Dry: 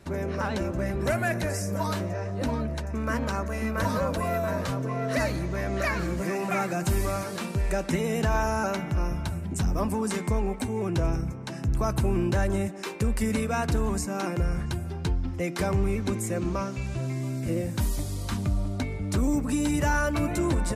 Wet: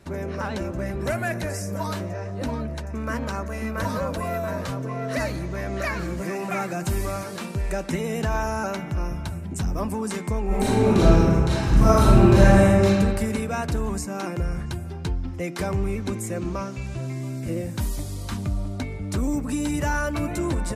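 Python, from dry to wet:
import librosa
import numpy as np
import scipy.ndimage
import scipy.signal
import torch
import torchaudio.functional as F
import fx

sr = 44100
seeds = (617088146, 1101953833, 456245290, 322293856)

y = fx.reverb_throw(x, sr, start_s=10.46, length_s=2.38, rt60_s=1.9, drr_db=-11.0)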